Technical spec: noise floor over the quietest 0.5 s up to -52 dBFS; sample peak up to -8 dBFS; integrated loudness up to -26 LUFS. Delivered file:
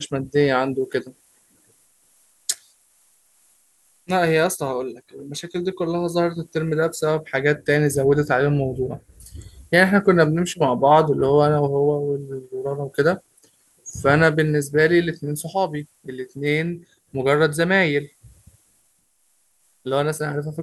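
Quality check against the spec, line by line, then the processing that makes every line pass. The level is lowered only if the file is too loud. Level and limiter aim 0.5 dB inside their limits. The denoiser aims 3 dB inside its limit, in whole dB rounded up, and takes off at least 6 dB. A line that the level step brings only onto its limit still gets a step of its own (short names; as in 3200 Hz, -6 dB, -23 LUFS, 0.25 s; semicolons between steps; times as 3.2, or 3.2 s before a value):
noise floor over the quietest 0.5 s -64 dBFS: OK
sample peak -1.5 dBFS: fail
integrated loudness -20.5 LUFS: fail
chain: gain -6 dB; limiter -8.5 dBFS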